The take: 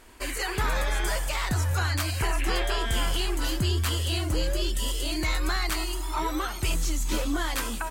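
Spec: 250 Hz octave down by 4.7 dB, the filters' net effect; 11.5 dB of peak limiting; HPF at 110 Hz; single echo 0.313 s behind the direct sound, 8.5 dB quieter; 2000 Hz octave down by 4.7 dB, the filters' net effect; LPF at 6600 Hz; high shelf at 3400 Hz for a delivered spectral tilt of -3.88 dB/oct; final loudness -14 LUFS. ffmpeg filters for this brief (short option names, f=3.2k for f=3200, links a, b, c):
-af "highpass=110,lowpass=6.6k,equalizer=f=250:t=o:g=-6.5,equalizer=f=2k:t=o:g=-4.5,highshelf=f=3.4k:g=-5,alimiter=level_in=6dB:limit=-24dB:level=0:latency=1,volume=-6dB,aecho=1:1:313:0.376,volume=24dB"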